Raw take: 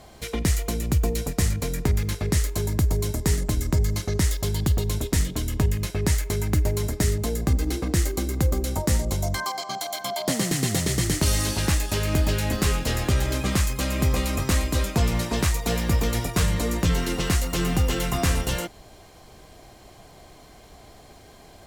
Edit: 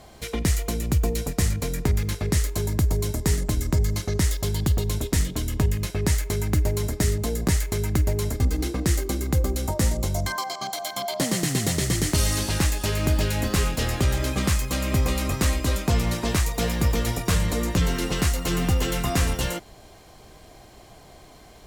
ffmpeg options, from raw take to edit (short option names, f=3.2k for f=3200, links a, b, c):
-filter_complex "[0:a]asplit=3[a][b][c];[a]atrim=end=7.482[d];[b]atrim=start=6.058:end=6.982[e];[c]atrim=start=7.478[f];[d][e]acrossfade=d=0.004:c1=hsin:c2=hsin[g];[g][f]acrossfade=d=0.004:c1=hsin:c2=hsin"